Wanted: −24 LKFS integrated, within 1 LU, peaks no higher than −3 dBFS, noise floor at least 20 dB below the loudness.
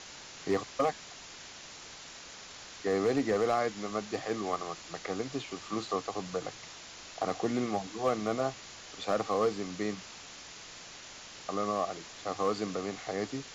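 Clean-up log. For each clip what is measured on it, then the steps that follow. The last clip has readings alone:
share of clipped samples 0.3%; peaks flattened at −21.0 dBFS; background noise floor −49 dBFS; target noise floor −54 dBFS; integrated loudness −33.5 LKFS; sample peak −21.0 dBFS; target loudness −24.0 LKFS
→ clipped peaks rebuilt −21 dBFS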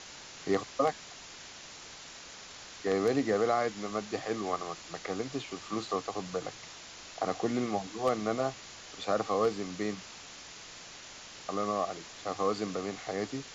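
share of clipped samples 0.0%; background noise floor −49 dBFS; target noise floor −53 dBFS
→ broadband denoise 6 dB, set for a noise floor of −49 dBFS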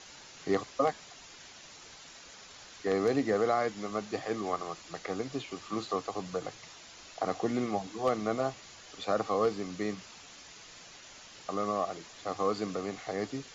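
background noise floor −52 dBFS; target noise floor −54 dBFS
→ broadband denoise 6 dB, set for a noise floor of −52 dBFS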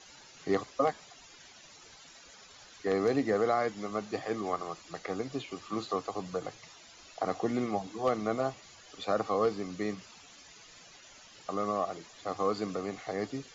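background noise floor −55 dBFS; integrated loudness −33.5 LKFS; sample peak −14.0 dBFS; target loudness −24.0 LKFS
→ level +9.5 dB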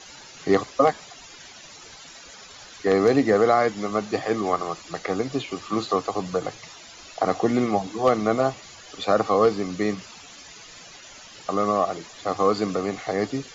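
integrated loudness −24.0 LKFS; sample peak −4.5 dBFS; background noise floor −45 dBFS

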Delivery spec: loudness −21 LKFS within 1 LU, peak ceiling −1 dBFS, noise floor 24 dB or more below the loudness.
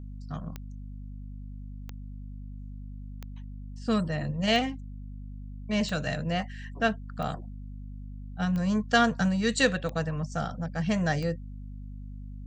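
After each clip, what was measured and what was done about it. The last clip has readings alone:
number of clicks 9; mains hum 50 Hz; hum harmonics up to 250 Hz; level of the hum −38 dBFS; integrated loudness −28.5 LKFS; sample peak −10.0 dBFS; target loudness −21.0 LKFS
→ click removal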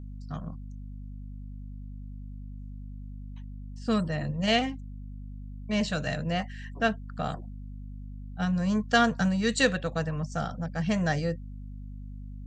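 number of clicks 0; mains hum 50 Hz; hum harmonics up to 250 Hz; level of the hum −38 dBFS
→ mains-hum notches 50/100/150/200/250 Hz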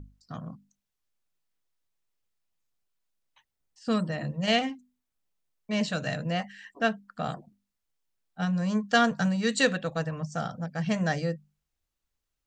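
mains hum none found; integrated loudness −28.5 LKFS; sample peak −10.0 dBFS; target loudness −21.0 LKFS
→ level +7.5 dB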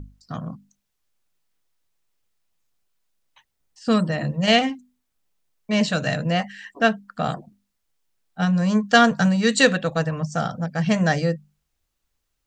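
integrated loudness −21.0 LKFS; sample peak −2.5 dBFS; background noise floor −76 dBFS

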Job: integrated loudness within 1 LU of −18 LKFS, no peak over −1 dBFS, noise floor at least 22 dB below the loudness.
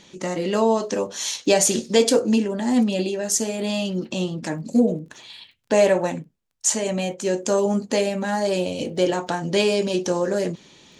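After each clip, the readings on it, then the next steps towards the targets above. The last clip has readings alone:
crackle rate 24 per second; integrated loudness −22.0 LKFS; sample peak −4.0 dBFS; target loudness −18.0 LKFS
→ click removal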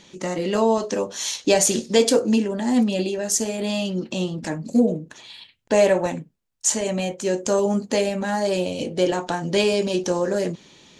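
crackle rate 0.091 per second; integrated loudness −22.0 LKFS; sample peak −4.0 dBFS; target loudness −18.0 LKFS
→ level +4 dB
brickwall limiter −1 dBFS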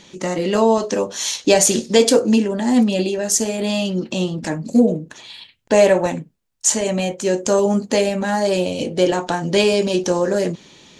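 integrated loudness −18.0 LKFS; sample peak −1.0 dBFS; background noise floor −51 dBFS

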